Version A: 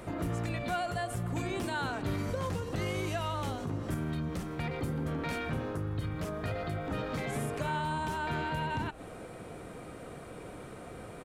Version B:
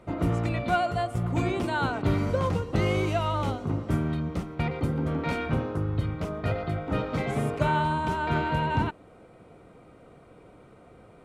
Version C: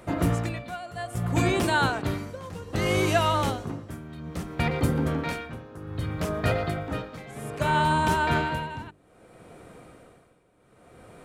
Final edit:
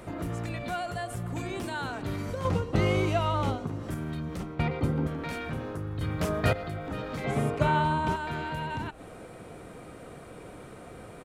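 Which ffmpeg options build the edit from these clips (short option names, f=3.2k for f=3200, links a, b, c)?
-filter_complex "[1:a]asplit=3[a][b][c];[0:a]asplit=5[d][e][f][g][h];[d]atrim=end=2.452[i];[a]atrim=start=2.448:end=3.672[j];[e]atrim=start=3.668:end=4.402[k];[b]atrim=start=4.398:end=5.072[l];[f]atrim=start=5.068:end=6.012[m];[2:a]atrim=start=6.008:end=6.532[n];[g]atrim=start=6.528:end=7.242[o];[c]atrim=start=7.238:end=8.162[p];[h]atrim=start=8.158[q];[i][j]acrossfade=d=0.004:c1=hsin:c2=hsin[r];[r][k]acrossfade=d=0.004:c1=hsin:c2=hsin[s];[s][l]acrossfade=d=0.004:c1=hsin:c2=hsin[t];[t][m]acrossfade=d=0.004:c1=hsin:c2=hsin[u];[u][n]acrossfade=d=0.004:c1=hsin:c2=hsin[v];[v][o]acrossfade=d=0.004:c1=hsin:c2=hsin[w];[w][p]acrossfade=d=0.004:c1=hsin:c2=hsin[x];[x][q]acrossfade=d=0.004:c1=hsin:c2=hsin"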